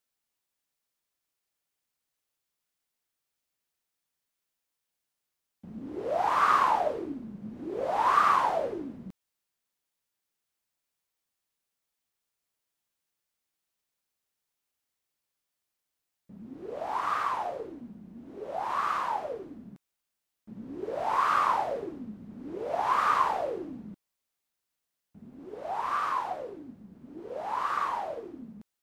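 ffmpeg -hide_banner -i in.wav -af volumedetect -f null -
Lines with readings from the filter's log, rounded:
mean_volume: -33.6 dB
max_volume: -11.2 dB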